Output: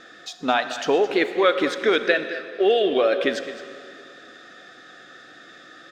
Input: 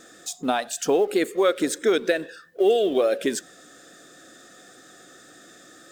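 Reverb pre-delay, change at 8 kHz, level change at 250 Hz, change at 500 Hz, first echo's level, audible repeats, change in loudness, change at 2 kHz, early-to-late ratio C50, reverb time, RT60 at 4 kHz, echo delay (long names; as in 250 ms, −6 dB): 29 ms, below −10 dB, 0.0 dB, +1.0 dB, −14.0 dB, 1, +1.5 dB, +7.0 dB, 9.5 dB, 2.5 s, 2.3 s, 216 ms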